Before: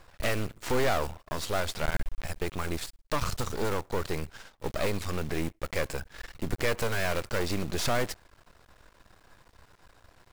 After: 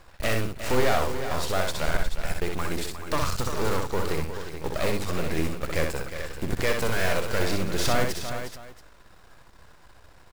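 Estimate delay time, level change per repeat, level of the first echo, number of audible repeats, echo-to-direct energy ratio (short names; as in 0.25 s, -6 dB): 63 ms, no steady repeat, -4.5 dB, 4, -2.5 dB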